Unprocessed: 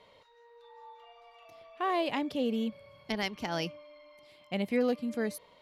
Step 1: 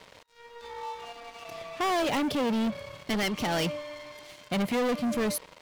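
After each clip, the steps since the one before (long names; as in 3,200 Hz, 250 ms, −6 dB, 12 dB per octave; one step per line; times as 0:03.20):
leveller curve on the samples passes 5
level −4.5 dB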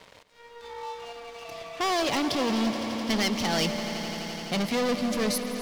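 dynamic equaliser 5,000 Hz, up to +8 dB, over −52 dBFS, Q 1.3
echo that builds up and dies away 85 ms, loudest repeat 5, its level −14.5 dB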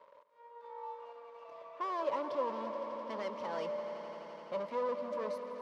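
pair of resonant band-passes 750 Hz, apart 0.76 octaves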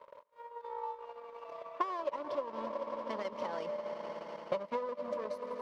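downward compressor 6 to 1, threshold −39 dBFS, peak gain reduction 10.5 dB
transient designer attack +8 dB, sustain −11 dB
level +3.5 dB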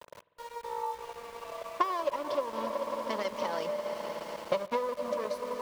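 high-shelf EQ 3,000 Hz +8.5 dB
centre clipping without the shift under −50 dBFS
on a send at −18 dB: convolution reverb RT60 2.9 s, pre-delay 48 ms
on the sum: level +4.5 dB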